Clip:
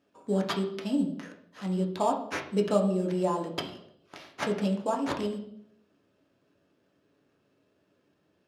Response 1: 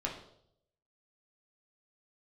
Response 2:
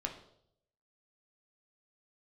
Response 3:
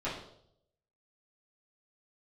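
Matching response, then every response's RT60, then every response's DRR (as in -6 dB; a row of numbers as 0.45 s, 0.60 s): 2; 0.70 s, 0.70 s, 0.70 s; -2.5 dB, 1.5 dB, -11.5 dB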